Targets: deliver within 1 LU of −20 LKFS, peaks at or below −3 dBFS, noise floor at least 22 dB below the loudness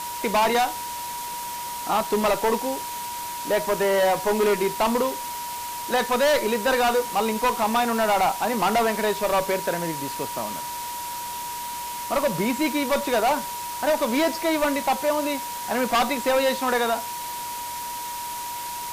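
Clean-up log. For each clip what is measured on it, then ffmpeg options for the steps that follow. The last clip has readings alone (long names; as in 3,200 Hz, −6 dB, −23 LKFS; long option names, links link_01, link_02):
interfering tone 960 Hz; level of the tone −31 dBFS; background noise floor −32 dBFS; target noise floor −46 dBFS; integrated loudness −24.0 LKFS; sample peak −13.5 dBFS; target loudness −20.0 LKFS
→ -af "bandreject=frequency=960:width=30"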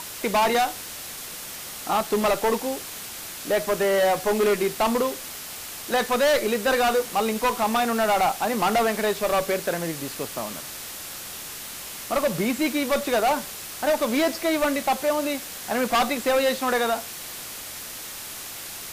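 interfering tone none found; background noise floor −37 dBFS; target noise floor −47 dBFS
→ -af "afftdn=noise_reduction=10:noise_floor=-37"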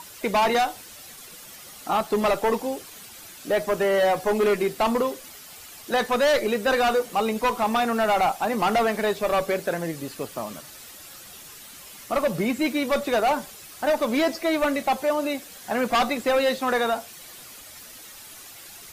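background noise floor −44 dBFS; target noise floor −46 dBFS
→ -af "afftdn=noise_reduction=6:noise_floor=-44"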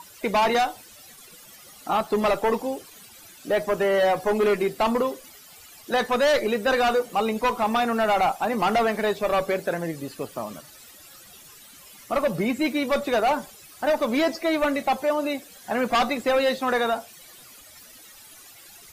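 background noise floor −48 dBFS; integrated loudness −24.0 LKFS; sample peak −13.5 dBFS; target loudness −20.0 LKFS
→ -af "volume=4dB"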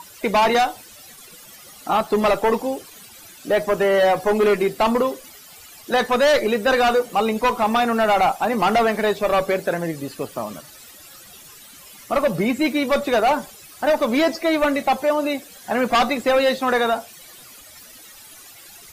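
integrated loudness −20.0 LKFS; sample peak −9.5 dBFS; background noise floor −44 dBFS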